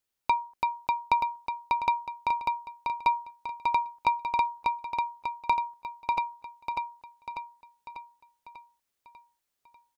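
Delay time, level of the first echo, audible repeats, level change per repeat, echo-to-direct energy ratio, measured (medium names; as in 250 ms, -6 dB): 594 ms, -3.0 dB, 6, -5.5 dB, -1.5 dB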